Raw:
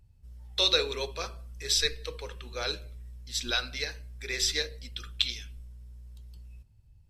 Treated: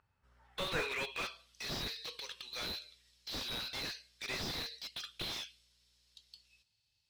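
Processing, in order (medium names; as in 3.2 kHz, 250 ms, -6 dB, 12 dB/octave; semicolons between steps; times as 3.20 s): band-pass sweep 1.3 kHz -> 4.2 kHz, 0.39–1.63 s; slew-rate limiter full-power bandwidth 10 Hz; trim +11.5 dB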